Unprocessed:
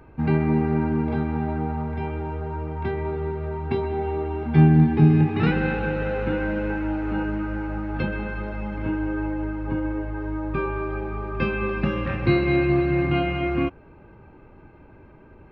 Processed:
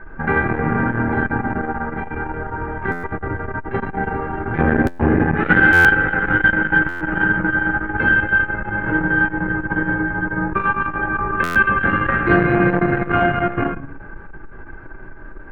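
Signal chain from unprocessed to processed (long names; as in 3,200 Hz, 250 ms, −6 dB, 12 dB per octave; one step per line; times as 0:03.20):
sub-octave generator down 1 octave, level +1 dB
high-pass filter 290 Hz 6 dB per octave
background noise brown −49 dBFS
low-pass with resonance 1,600 Hz, resonance Q 6.8
rectangular room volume 33 cubic metres, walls mixed, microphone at 0.73 metres
buffer that repeats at 0:02.91/0:04.86/0:05.72/0:06.88/0:11.43, samples 512, times 10
saturating transformer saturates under 390 Hz
level +2.5 dB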